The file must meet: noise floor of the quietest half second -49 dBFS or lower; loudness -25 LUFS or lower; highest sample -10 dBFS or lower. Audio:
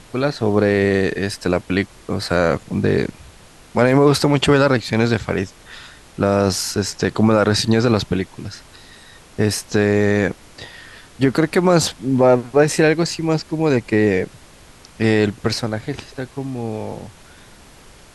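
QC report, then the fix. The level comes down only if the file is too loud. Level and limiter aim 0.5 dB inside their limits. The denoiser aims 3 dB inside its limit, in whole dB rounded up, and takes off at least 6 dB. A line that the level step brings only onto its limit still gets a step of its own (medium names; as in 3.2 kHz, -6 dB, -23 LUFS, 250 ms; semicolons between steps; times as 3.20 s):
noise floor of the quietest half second -45 dBFS: fail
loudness -18.0 LUFS: fail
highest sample -4.0 dBFS: fail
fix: trim -7.5 dB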